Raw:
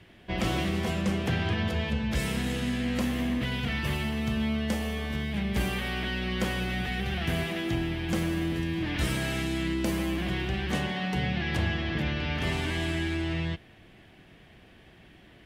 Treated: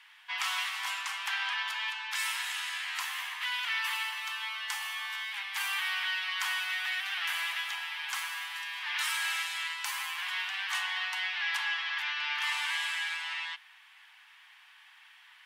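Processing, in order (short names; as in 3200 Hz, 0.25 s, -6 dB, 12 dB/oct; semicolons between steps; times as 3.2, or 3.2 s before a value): steep high-pass 870 Hz 72 dB/oct; gain +3 dB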